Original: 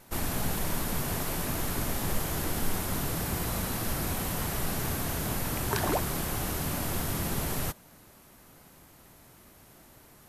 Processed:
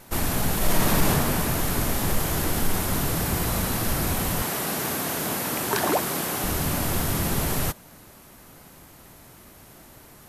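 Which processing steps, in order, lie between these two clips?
0.57–1.08 reverb throw, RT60 2.2 s, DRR -5 dB; 4.42–6.44 HPF 210 Hz 12 dB/oct; soft clip -15.5 dBFS, distortion -24 dB; gain +6.5 dB

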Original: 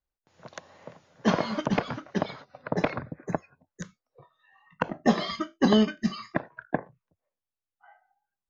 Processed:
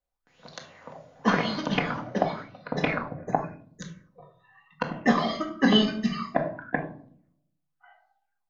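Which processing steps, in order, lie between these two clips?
shoebox room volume 820 m³, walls furnished, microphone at 1.9 m; LFO bell 0.93 Hz 600–4400 Hz +12 dB; gain -3.5 dB

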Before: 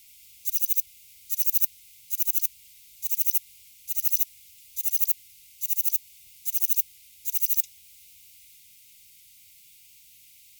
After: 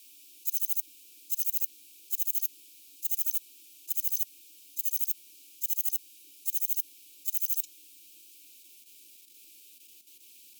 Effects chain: level quantiser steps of 9 dB; frequency shift +240 Hz

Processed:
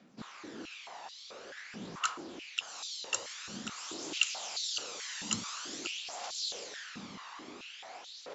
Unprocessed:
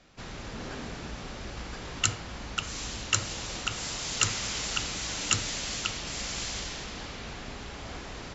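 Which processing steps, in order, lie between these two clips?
phaser 0.48 Hz, delay 1.1 ms, feedback 43%; dynamic EQ 2000 Hz, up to -6 dB, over -47 dBFS, Q 2.1; stepped high-pass 4.6 Hz 210–4000 Hz; gain -8.5 dB

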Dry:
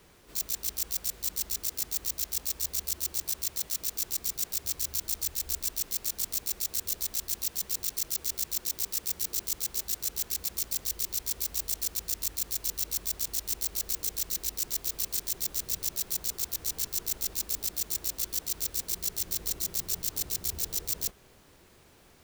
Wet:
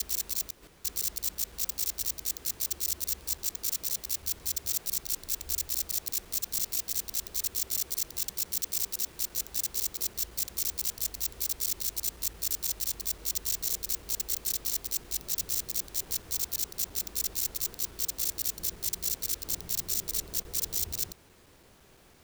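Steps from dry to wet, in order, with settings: slices in reverse order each 0.169 s, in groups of 5

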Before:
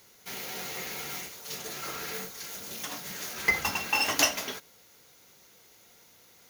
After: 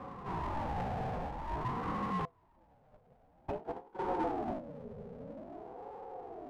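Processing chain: rattling part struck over -44 dBFS, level -13 dBFS; low-pass sweep 470 Hz -> 210 Hz, 2.64–4.65; power-law curve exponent 0.5; HPF 52 Hz 6 dB/oct; high shelf 5200 Hz -11 dB; 2.25–3.99 gate -30 dBFS, range -28 dB; bell 91 Hz +13.5 dB 0.63 oct; soft clip -24 dBFS, distortion -22 dB; ring modulator with a swept carrier 480 Hz, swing 35%, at 0.5 Hz

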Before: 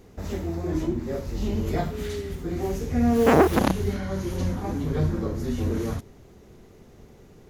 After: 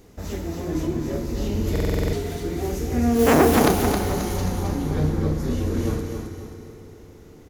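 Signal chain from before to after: high shelf 4300 Hz +6 dB, from 3.19 s +11 dB, from 4.4 s +3 dB; feedback echo 0.267 s, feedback 39%, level -5.5 dB; FDN reverb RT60 3.7 s, high-frequency decay 0.65×, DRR 6 dB; stuck buffer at 1.71, samples 2048, times 8

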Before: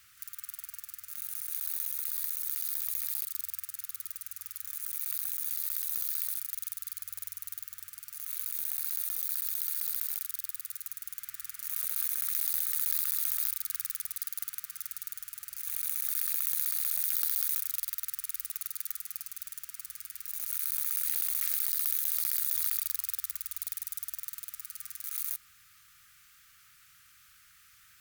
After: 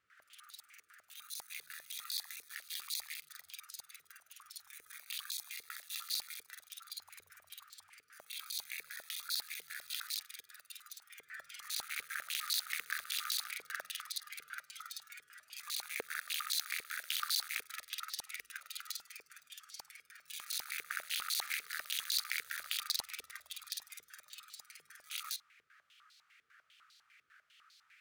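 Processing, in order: spectral noise reduction 10 dB; stepped band-pass 10 Hz 450–4200 Hz; gain +17 dB

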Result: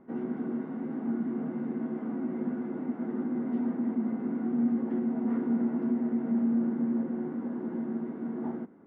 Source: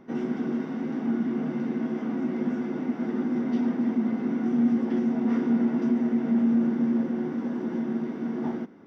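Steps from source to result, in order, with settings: LPF 1500 Hz 12 dB/oct; notches 50/100/150 Hz; gain -4.5 dB

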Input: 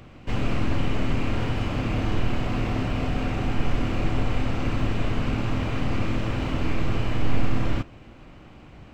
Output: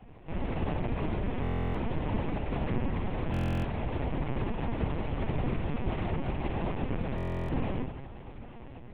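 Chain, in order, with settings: LPF 1300 Hz 6 dB/oct; noise vocoder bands 4; diffused feedback echo 0.955 s, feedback 62%, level -16 dB; on a send at -3.5 dB: reverb RT60 1.1 s, pre-delay 3 ms; on the sum: LPC vocoder at 8 kHz pitch kept; stuck buffer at 1.42/3.32/7.16, samples 1024, times 13; Doppler distortion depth 0.22 ms; gain -4.5 dB

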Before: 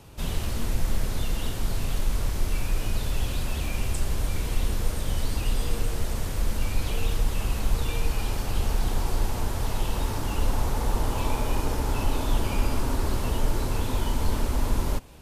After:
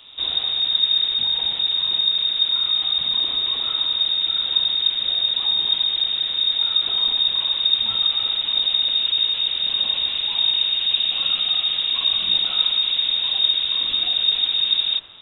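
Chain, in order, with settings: in parallel at -9 dB: wavefolder -26 dBFS; on the sum: thin delay 66 ms, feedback 72%, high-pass 2500 Hz, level -7 dB; inverted band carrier 3700 Hz

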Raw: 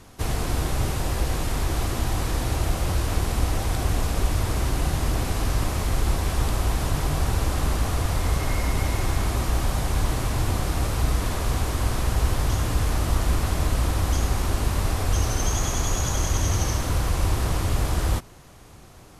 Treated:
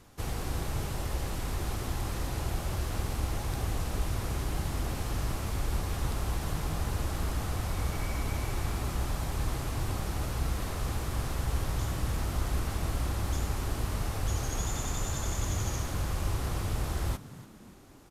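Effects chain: varispeed +6%; frequency-shifting echo 0.291 s, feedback 46%, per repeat +72 Hz, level -17.5 dB; gain -8.5 dB

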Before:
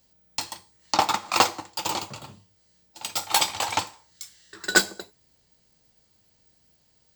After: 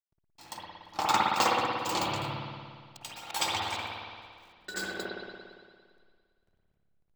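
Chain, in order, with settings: auto swell 0.254 s; backlash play -47.5 dBFS; spring tank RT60 1.9 s, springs 57 ms, chirp 50 ms, DRR -4 dB

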